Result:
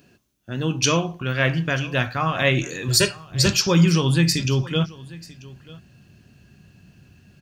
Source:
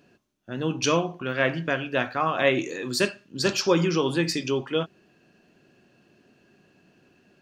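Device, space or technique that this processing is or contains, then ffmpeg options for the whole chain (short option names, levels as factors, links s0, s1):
smiley-face EQ: -filter_complex "[0:a]lowshelf=f=85:g=7,equalizer=f=680:t=o:w=2.9:g=-5,highshelf=f=8700:g=9,asettb=1/sr,asplit=3[s0][s1][s2];[s0]atrim=end=2.884[s3];[s1]atrim=start=2.88:end=3.46,asetpts=PTS-STARTPTS,afade=t=in:d=0.004:c=qsin,afade=t=out:st=0.576:d=0.004:c=qsin,aecho=1:1:2.1:0.91,atrim=end_sample=25578[s4];[s2]atrim=start=3.456[s5];[s3][s4]acrossfade=d=0.004:c1=hsin:c2=qsin[s6];[s6][s5]acrossfade=d=0.004:c1=qsin:c2=hsin,aecho=1:1:939:0.0891,asubboost=boost=8:cutoff=120,highpass=51,volume=1.88"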